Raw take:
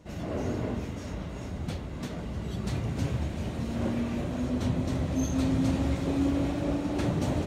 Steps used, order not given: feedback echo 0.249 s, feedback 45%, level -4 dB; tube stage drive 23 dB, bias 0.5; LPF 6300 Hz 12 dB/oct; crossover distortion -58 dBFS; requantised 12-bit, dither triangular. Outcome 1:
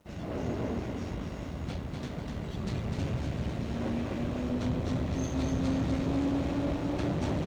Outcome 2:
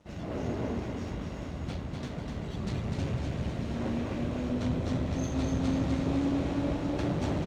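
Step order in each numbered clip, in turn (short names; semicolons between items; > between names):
LPF > requantised > feedback echo > tube stage > crossover distortion; requantised > LPF > crossover distortion > tube stage > feedback echo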